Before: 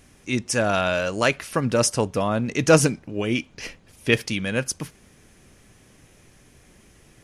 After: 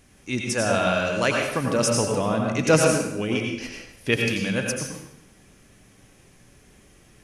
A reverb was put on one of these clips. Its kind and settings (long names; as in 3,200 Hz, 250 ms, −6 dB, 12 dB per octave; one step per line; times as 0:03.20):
dense smooth reverb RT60 0.8 s, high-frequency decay 0.85×, pre-delay 75 ms, DRR 0.5 dB
level −3 dB